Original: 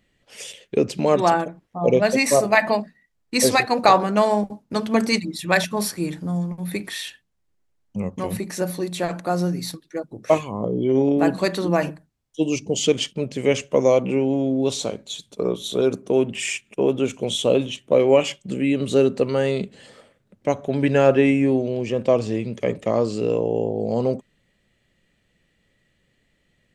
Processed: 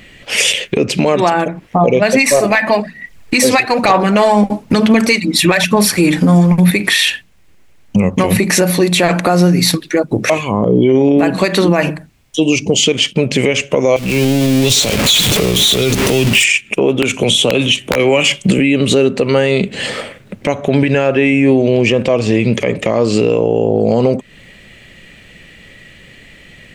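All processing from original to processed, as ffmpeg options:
-filter_complex "[0:a]asettb=1/sr,asplit=3[a][b][c];[a]atrim=end=2.144[d];[b]atrim=start=2.14:end=6.71,asetpts=PTS-STARTPTS,afade=t=in:d=0.004:c=qsin,afade=t=out:st=4.566:d=0.004:c=qsin,acontrast=28,aphaser=in_gain=1:out_gain=1:delay=4:decay=0.4:speed=1.1:type=sinusoidal[e];[c]atrim=start=6.706[f];[d][e]acrossfade=d=0.004:c1=hsin:c2=qsin[g];[g][f]acrossfade=d=0.004:c1=qsin:c2=hsin,asettb=1/sr,asplit=3[h][i][j];[h]atrim=end=13.964[k];[i]atrim=start=13.96:end=16.44,asetpts=PTS-STARTPTS,afade=t=in:d=0.004:c=qsin,afade=t=out:st=2.476:d=0.004:c=qsin,aeval=exprs='val(0)+0.5*0.0398*sgn(val(0))':c=same,acrossover=split=130|3000[l][m][n];[m]acompressor=threshold=-33dB:ratio=5:attack=3.2:release=140:knee=2.83:detection=peak[o];[l][o][n]amix=inputs=3:normalize=0[p];[j]atrim=start=16.436[q];[k][p]acrossfade=d=0.004:c1=hsin:c2=qsin[r];[r][q]acrossfade=d=0.004:c1=qsin:c2=hsin,asettb=1/sr,asplit=3[s][t][u];[s]atrim=end=17.024[v];[t]atrim=start=17.02:end=18.59,asetpts=PTS-STARTPTS,afade=t=in:d=0.004:c=qsin,afade=t=out:st=1.566:d=0.004:c=qsin,equalizer=f=10k:w=1.6:g=5,acrossover=split=280|930|4800[w][x][y][z];[w]acompressor=threshold=-29dB:ratio=3[aa];[x]acompressor=threshold=-29dB:ratio=3[ab];[y]acompressor=threshold=-32dB:ratio=3[ac];[z]acompressor=threshold=-37dB:ratio=3[ad];[aa][ab][ac][ad]amix=inputs=4:normalize=0,aeval=exprs='(mod(4.47*val(0)+1,2)-1)/4.47':c=same[ae];[u]atrim=start=18.586[af];[v][ae]acrossfade=d=0.004:c1=hsin:c2=qsin[ag];[ag][af]acrossfade=d=0.004:c1=qsin:c2=hsin,equalizer=f=2.4k:w=1.6:g=7.5,acompressor=threshold=-31dB:ratio=6,alimiter=level_in=25dB:limit=-1dB:release=50:level=0:latency=1,volume=-1dB"

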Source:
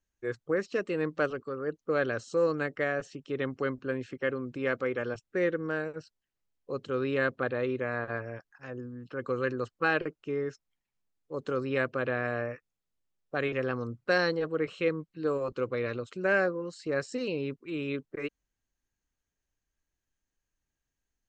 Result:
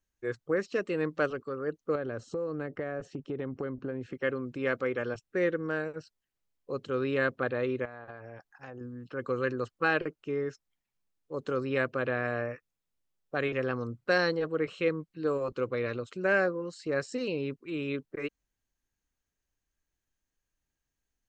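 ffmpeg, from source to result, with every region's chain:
-filter_complex "[0:a]asettb=1/sr,asplit=3[a][b][c];[a]atrim=end=1.954[d];[b]atrim=start=1.95:end=4.13,asetpts=PTS-STARTPTS,afade=t=in:d=0.004:c=qsin,afade=t=out:st=2.176:d=0.004:c=qsin,tiltshelf=f=1.4k:g=7,acompressor=threshold=-31dB:ratio=6:attack=3.2:release=140:knee=1:detection=peak[e];[c]atrim=start=4.126[f];[d][e]acrossfade=d=0.004:c1=hsin:c2=qsin[g];[g][f]acrossfade=d=0.004:c1=qsin:c2=hsin,asettb=1/sr,asplit=3[h][i][j];[h]atrim=end=7.854[k];[i]atrim=start=7.85:end=8.81,asetpts=PTS-STARTPTS,afade=t=in:d=0.004:c=qsin,afade=t=out:st=0.956:d=0.004:c=qsin,equalizer=f=800:t=o:w=0.37:g=9.5,acompressor=threshold=-39dB:ratio=12:attack=3.2:release=140:knee=1:detection=peak[l];[j]atrim=start=8.806[m];[k][l]acrossfade=d=0.004:c1=hsin:c2=qsin[n];[n][m]acrossfade=d=0.004:c1=qsin:c2=hsin"

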